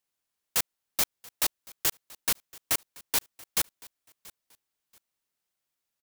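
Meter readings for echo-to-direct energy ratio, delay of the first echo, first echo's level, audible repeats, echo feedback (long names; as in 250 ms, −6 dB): −22.0 dB, 682 ms, −22.5 dB, 2, 26%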